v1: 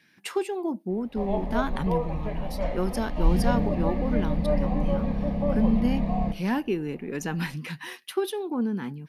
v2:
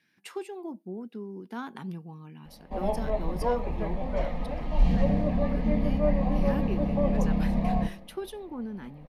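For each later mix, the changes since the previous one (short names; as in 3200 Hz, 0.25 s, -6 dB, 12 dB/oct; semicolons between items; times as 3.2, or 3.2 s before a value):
speech -9.0 dB; background: entry +1.55 s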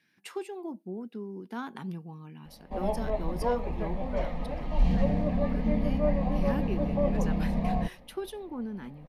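reverb: off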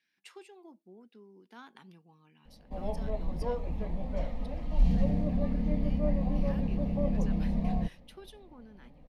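speech: add band-pass 2200 Hz, Q 0.59; master: add bell 1300 Hz -9.5 dB 3 oct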